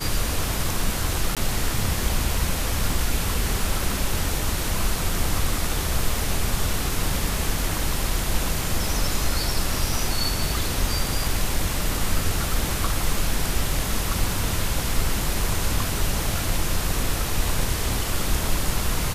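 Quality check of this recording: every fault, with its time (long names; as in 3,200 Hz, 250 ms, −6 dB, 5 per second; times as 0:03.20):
0:01.35–0:01.37: drop-out 17 ms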